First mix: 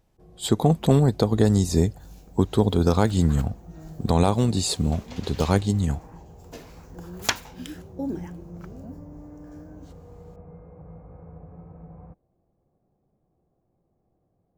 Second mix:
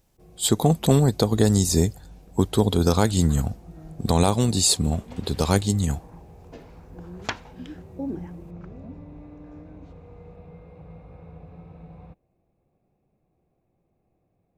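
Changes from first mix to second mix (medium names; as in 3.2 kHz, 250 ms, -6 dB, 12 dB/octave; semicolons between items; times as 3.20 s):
first sound: remove low-pass 1.7 kHz 24 dB/octave; second sound: add tape spacing loss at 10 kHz 34 dB; master: add treble shelf 4.3 kHz +11 dB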